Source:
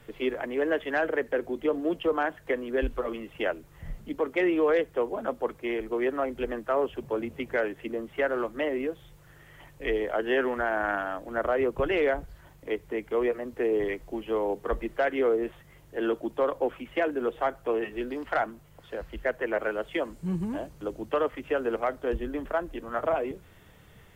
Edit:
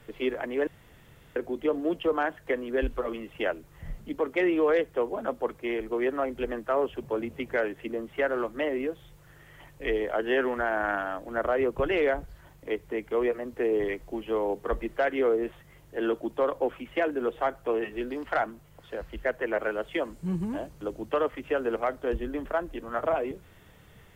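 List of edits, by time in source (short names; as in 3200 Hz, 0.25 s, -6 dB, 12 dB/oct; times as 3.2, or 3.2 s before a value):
0.67–1.36 room tone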